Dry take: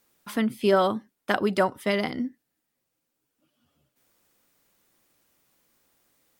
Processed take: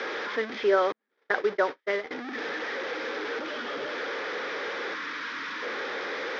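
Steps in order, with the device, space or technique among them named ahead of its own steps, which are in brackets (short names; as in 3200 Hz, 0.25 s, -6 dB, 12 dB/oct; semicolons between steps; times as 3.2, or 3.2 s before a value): digital answering machine (BPF 350–3200 Hz; delta modulation 32 kbps, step -25.5 dBFS; speaker cabinet 360–4400 Hz, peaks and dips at 450 Hz +8 dB, 690 Hz -7 dB, 1000 Hz -4 dB, 1700 Hz +4 dB, 2800 Hz -9 dB, 4300 Hz -7 dB); 0.92–2.11 gate -27 dBFS, range -49 dB; 4.94–5.63 spectral gain 340–890 Hz -14 dB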